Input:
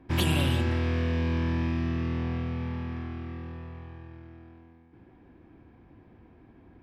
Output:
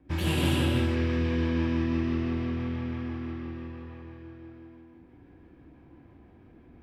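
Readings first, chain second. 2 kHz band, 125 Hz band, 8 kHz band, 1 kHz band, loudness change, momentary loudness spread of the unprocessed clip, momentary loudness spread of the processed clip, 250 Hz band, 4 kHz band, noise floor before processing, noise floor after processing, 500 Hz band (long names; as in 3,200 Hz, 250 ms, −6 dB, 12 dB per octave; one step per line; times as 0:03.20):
0.0 dB, −1.0 dB, can't be measured, −1.0 dB, +0.5 dB, 19 LU, 20 LU, +2.5 dB, −0.5 dB, −56 dBFS, −55 dBFS, +2.0 dB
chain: rotating-speaker cabinet horn 6 Hz
reverb whose tail is shaped and stops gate 360 ms flat, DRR −6 dB
level −4 dB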